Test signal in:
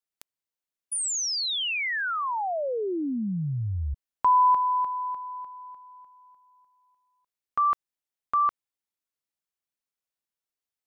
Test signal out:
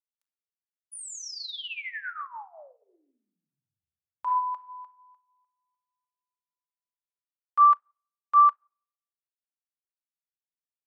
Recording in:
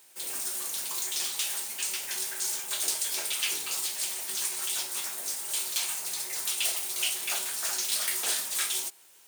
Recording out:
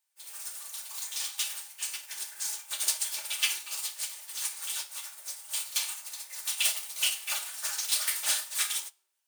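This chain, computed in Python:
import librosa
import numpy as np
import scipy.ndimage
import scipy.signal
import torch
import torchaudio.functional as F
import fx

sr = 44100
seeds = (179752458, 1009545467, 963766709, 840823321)

y = scipy.signal.sosfilt(scipy.signal.butter(2, 770.0, 'highpass', fs=sr, output='sos'), x)
y = fx.room_shoebox(y, sr, seeds[0], volume_m3=2800.0, walls='furnished', distance_m=2.5)
y = fx.upward_expand(y, sr, threshold_db=-43.0, expansion=2.5)
y = F.gain(torch.from_numpy(y), 2.5).numpy()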